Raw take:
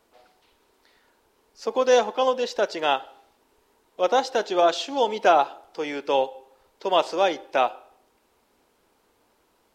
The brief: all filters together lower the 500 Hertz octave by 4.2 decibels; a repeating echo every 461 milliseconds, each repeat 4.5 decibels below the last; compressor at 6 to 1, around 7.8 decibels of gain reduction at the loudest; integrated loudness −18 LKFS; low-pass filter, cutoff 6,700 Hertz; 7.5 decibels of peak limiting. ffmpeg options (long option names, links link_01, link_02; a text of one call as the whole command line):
ffmpeg -i in.wav -af "lowpass=6700,equalizer=frequency=500:width_type=o:gain=-5,acompressor=threshold=-24dB:ratio=6,alimiter=limit=-20.5dB:level=0:latency=1,aecho=1:1:461|922|1383|1844|2305|2766|3227|3688|4149:0.596|0.357|0.214|0.129|0.0772|0.0463|0.0278|0.0167|0.01,volume=14.5dB" out.wav